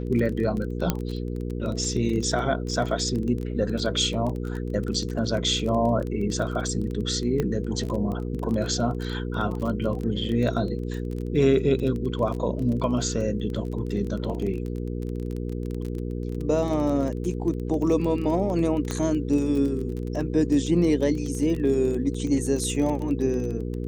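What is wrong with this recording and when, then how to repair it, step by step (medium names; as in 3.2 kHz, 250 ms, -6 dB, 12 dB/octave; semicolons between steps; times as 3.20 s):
crackle 21 per s -29 dBFS
hum 60 Hz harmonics 8 -30 dBFS
0.90 s: pop -8 dBFS
7.40 s: pop -13 dBFS
18.91 s: pop -14 dBFS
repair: de-click; de-hum 60 Hz, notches 8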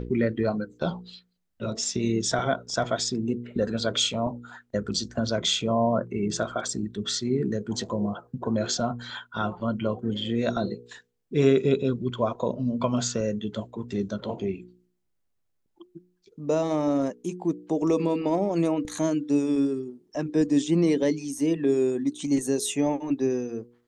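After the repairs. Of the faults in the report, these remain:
nothing left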